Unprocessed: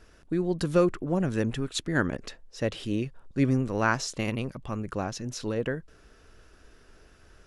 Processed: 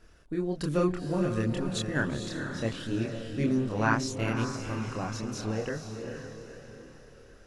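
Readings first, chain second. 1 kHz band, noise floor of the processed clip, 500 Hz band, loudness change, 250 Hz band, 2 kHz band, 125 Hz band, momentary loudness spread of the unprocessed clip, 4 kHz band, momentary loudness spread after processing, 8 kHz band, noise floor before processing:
-1.0 dB, -53 dBFS, -2.5 dB, -2.0 dB, -1.5 dB, -1.0 dB, -1.0 dB, 9 LU, -1.5 dB, 13 LU, -2.0 dB, -57 dBFS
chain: diffused feedback echo 0.469 s, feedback 45%, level -6 dB; chorus voices 2, 0.66 Hz, delay 27 ms, depth 1.1 ms

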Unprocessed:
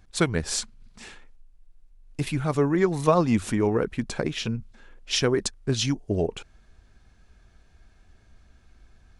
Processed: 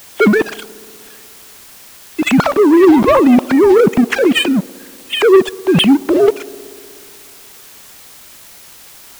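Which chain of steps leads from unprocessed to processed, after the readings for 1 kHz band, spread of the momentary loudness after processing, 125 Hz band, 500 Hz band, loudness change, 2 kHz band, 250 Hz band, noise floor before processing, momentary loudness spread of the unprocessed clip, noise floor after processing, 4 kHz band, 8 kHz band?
+12.5 dB, 13 LU, +3.5 dB, +15.0 dB, +14.0 dB, +15.0 dB, +15.5 dB, -58 dBFS, 10 LU, -39 dBFS, +11.5 dB, +2.5 dB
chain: sine-wave speech; low shelf 360 Hz +4 dB; sample leveller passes 3; transient shaper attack -1 dB, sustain +12 dB; in parallel at 0 dB: vocal rider 0.5 s; on the sum: requantised 6-bit, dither triangular; on a send: band-limited delay 61 ms, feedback 84%, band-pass 520 Hz, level -22.5 dB; on the sum: gain -3 dB

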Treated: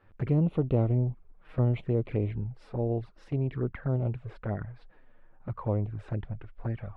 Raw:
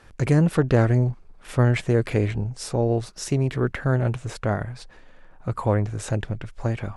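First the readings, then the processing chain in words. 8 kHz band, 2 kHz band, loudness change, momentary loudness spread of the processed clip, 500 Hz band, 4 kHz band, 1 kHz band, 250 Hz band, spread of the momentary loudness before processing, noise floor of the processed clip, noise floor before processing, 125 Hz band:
under -35 dB, -17.0 dB, -7.0 dB, 11 LU, -8.5 dB, under -15 dB, -11.5 dB, -7.0 dB, 10 LU, -57 dBFS, -49 dBFS, -6.5 dB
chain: envelope flanger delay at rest 11 ms, full sweep at -18 dBFS; air absorption 440 m; gain -6 dB

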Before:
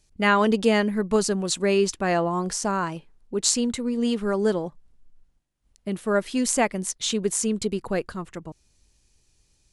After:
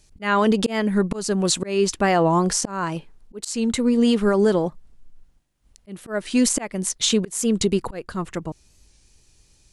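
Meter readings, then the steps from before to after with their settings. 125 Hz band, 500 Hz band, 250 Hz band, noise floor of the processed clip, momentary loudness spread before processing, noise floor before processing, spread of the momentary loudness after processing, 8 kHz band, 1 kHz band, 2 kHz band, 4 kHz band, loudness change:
+4.5 dB, +1.5 dB, +4.0 dB, -58 dBFS, 12 LU, -66 dBFS, 12 LU, +1.5 dB, +2.0 dB, -1.0 dB, +3.0 dB, +2.5 dB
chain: auto swell 0.347 s; limiter -17 dBFS, peak gain reduction 11 dB; record warp 45 rpm, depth 100 cents; gain +7.5 dB

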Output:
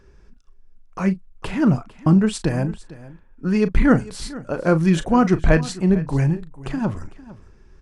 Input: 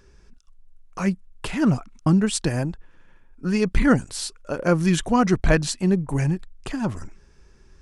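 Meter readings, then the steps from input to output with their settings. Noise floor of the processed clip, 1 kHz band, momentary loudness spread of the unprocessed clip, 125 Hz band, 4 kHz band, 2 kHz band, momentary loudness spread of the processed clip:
-50 dBFS, +2.0 dB, 11 LU, +3.0 dB, -3.0 dB, +0.5 dB, 13 LU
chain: high shelf 3200 Hz -10 dB; doubler 37 ms -13 dB; on a send: echo 0.452 s -18.5 dB; on the sum: gain +2.5 dB

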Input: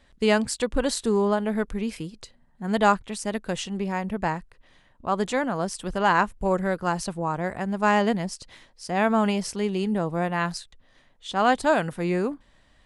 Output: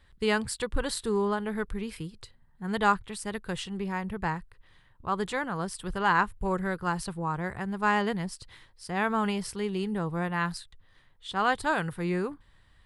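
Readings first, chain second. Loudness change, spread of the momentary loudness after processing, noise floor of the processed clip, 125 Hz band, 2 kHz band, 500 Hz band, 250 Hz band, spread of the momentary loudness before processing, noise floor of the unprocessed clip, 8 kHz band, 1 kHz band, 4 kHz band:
-5.0 dB, 11 LU, -61 dBFS, -3.0 dB, -2.0 dB, -7.0 dB, -5.5 dB, 10 LU, -60 dBFS, -5.0 dB, -4.0 dB, -4.0 dB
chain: fifteen-band EQ 100 Hz +5 dB, 250 Hz -10 dB, 630 Hz -11 dB, 2500 Hz -4 dB, 6300 Hz -10 dB

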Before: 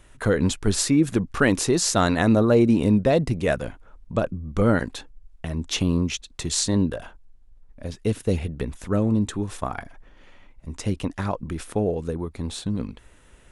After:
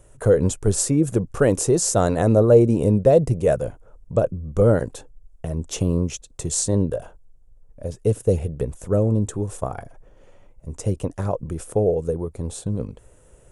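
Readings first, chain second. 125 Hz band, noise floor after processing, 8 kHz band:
+3.5 dB, -52 dBFS, +2.0 dB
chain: ten-band EQ 125 Hz +6 dB, 250 Hz -6 dB, 500 Hz +9 dB, 1000 Hz -3 dB, 2000 Hz -8 dB, 4000 Hz -10 dB, 8000 Hz +6 dB

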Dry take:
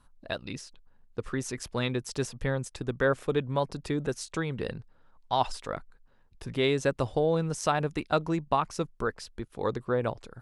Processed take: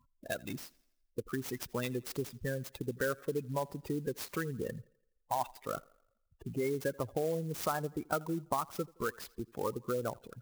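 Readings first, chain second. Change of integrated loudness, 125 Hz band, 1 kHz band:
-6.5 dB, -7.5 dB, -7.0 dB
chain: spectral gate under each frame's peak -15 dB strong; dynamic EQ 1500 Hz, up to +4 dB, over -41 dBFS, Q 1.1; compressor 2.5:1, threshold -33 dBFS, peak gain reduction 10 dB; HPF 120 Hz 6 dB/oct; on a send: thinning echo 84 ms, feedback 49%, high-pass 180 Hz, level -23.5 dB; on the sum: clock jitter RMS 0.039 ms

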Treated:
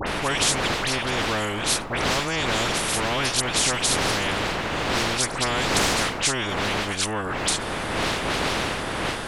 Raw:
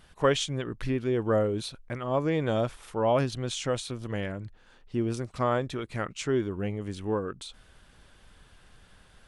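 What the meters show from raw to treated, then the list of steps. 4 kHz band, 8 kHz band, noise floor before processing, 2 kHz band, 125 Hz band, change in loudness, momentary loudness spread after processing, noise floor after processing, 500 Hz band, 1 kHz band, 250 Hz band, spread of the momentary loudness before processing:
+15.0 dB, +18.0 dB, -58 dBFS, +15.5 dB, +1.5 dB, +6.5 dB, 5 LU, -30 dBFS, +0.5 dB, +9.0 dB, +2.0 dB, 10 LU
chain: wind noise 500 Hz -30 dBFS; dispersion highs, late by 70 ms, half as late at 2100 Hz; spectral compressor 4:1

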